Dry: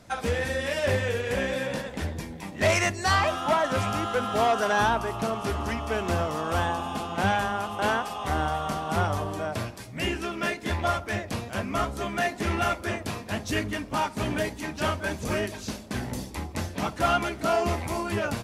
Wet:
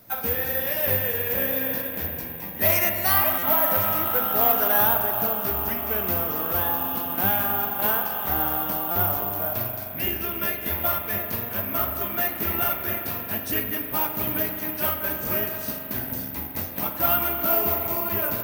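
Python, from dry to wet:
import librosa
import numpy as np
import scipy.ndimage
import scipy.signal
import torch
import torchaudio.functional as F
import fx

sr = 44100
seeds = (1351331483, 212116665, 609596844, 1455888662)

y = fx.low_shelf(x, sr, hz=73.0, db=-5.5)
y = fx.rev_spring(y, sr, rt60_s=3.3, pass_ms=(42,), chirp_ms=65, drr_db=4.0)
y = (np.kron(scipy.signal.resample_poly(y, 1, 3), np.eye(3)[0]) * 3)[:len(y)]
y = fx.buffer_glitch(y, sr, at_s=(3.38, 8.91), block=256, repeats=7)
y = F.gain(torch.from_numpy(y), -3.0).numpy()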